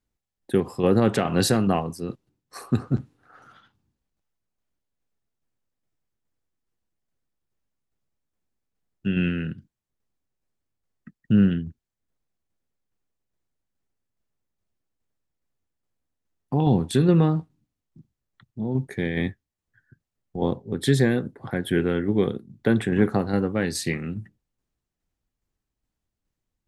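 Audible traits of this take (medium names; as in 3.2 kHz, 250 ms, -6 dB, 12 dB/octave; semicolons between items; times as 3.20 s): tremolo saw down 2.4 Hz, depth 40%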